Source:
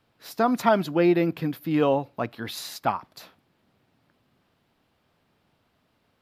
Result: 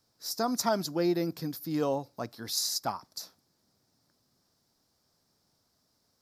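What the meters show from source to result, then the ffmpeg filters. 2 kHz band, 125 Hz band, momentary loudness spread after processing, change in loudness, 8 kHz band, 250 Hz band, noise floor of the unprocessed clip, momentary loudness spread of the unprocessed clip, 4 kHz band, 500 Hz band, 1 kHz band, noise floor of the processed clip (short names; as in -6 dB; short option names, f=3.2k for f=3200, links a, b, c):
-10.5 dB, -7.5 dB, 12 LU, -6.5 dB, +8.5 dB, -7.5 dB, -70 dBFS, 13 LU, +3.0 dB, -7.5 dB, -8.0 dB, -74 dBFS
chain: -af "highshelf=f=3.9k:t=q:w=3:g=11.5,volume=-7.5dB"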